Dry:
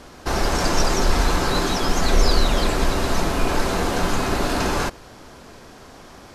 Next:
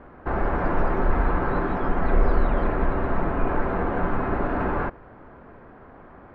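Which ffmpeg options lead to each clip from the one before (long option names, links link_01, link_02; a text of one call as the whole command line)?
ffmpeg -i in.wav -af "lowpass=frequency=1800:width=0.5412,lowpass=frequency=1800:width=1.3066,volume=-2.5dB" out.wav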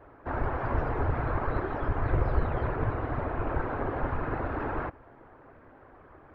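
ffmpeg -i in.wav -af "afftfilt=real='hypot(re,im)*cos(2*PI*random(0))':imag='hypot(re,im)*sin(2*PI*random(1))':win_size=512:overlap=0.75,equalizer=frequency=190:width_type=o:width=0.34:gain=-13" out.wav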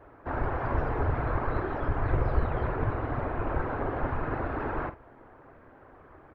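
ffmpeg -i in.wav -filter_complex "[0:a]asplit=2[link_01][link_02];[link_02]adelay=47,volume=-11.5dB[link_03];[link_01][link_03]amix=inputs=2:normalize=0" out.wav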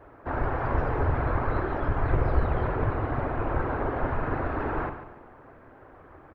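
ffmpeg -i in.wav -af "aecho=1:1:142|284|426|568:0.282|0.113|0.0451|0.018,volume=2dB" out.wav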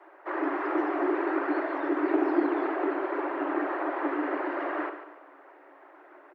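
ffmpeg -i in.wav -af "afreqshift=280,volume=-2.5dB" out.wav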